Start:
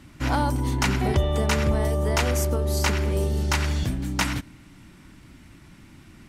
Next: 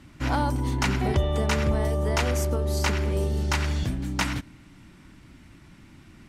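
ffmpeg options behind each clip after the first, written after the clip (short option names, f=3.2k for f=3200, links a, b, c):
-af "highshelf=f=9.4k:g=-6.5,volume=-1.5dB"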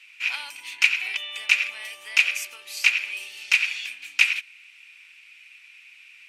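-af "highpass=f=2.5k:t=q:w=11"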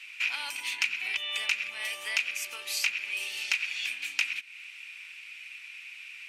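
-filter_complex "[0:a]acrossover=split=270[a][b];[b]acompressor=threshold=-32dB:ratio=5[c];[a][c]amix=inputs=2:normalize=0,volume=4.5dB"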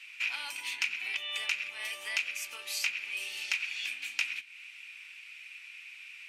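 -af "flanger=delay=9:depth=2.8:regen=-67:speed=0.36:shape=sinusoidal,volume=1dB"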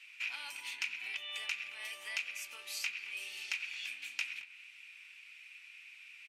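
-filter_complex "[0:a]asplit=2[a][b];[b]adelay=220,highpass=300,lowpass=3.4k,asoftclip=type=hard:threshold=-21.5dB,volume=-14dB[c];[a][c]amix=inputs=2:normalize=0,volume=-6dB"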